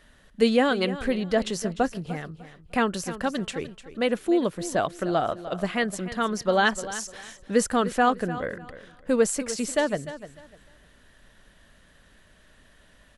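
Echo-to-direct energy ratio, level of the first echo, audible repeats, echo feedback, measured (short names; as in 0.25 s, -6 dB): -13.5 dB, -14.0 dB, 2, 24%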